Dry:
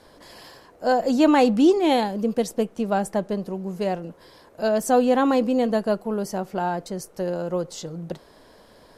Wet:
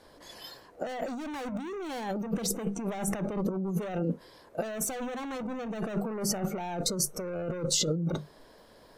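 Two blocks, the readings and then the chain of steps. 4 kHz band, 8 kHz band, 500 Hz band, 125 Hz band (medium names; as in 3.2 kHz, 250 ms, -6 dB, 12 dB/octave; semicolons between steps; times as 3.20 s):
-1.5 dB, +5.5 dB, -12.5 dB, 0.0 dB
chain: overload inside the chain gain 26 dB; hum notches 50/100/150/200/250 Hz; spectral noise reduction 17 dB; compressor with a negative ratio -38 dBFS, ratio -1; trim +5 dB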